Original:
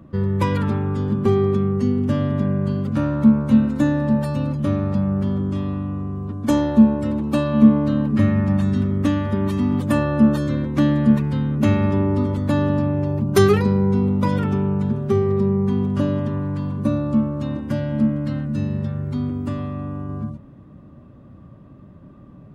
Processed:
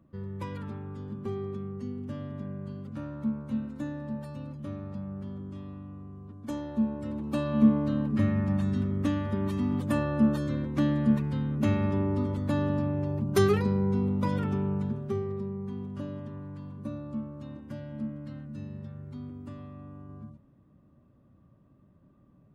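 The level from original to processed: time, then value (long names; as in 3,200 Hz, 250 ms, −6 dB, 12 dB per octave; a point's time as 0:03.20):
0:06.62 −17 dB
0:07.51 −8.5 dB
0:14.76 −8.5 dB
0:15.50 −16.5 dB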